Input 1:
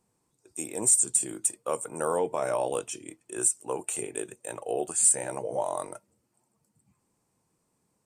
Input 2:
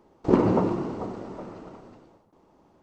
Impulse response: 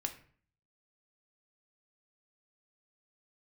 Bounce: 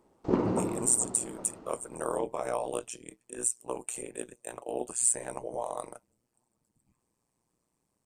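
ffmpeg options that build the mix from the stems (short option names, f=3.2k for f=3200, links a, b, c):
-filter_complex "[0:a]tremolo=f=120:d=0.974,bandreject=f=1.4k:w=21,volume=-0.5dB[a];[1:a]volume=-7dB[b];[a][b]amix=inputs=2:normalize=0"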